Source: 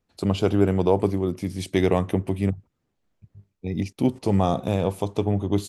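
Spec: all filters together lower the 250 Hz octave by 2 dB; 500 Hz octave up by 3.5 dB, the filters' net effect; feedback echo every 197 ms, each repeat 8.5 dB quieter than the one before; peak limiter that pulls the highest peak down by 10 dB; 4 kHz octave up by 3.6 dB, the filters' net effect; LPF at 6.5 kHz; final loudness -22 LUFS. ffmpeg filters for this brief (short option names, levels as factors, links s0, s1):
-af "lowpass=6500,equalizer=f=250:t=o:g=-5,equalizer=f=500:t=o:g=6,equalizer=f=4000:t=o:g=5,alimiter=limit=0.188:level=0:latency=1,aecho=1:1:197|394|591|788:0.376|0.143|0.0543|0.0206,volume=1.78"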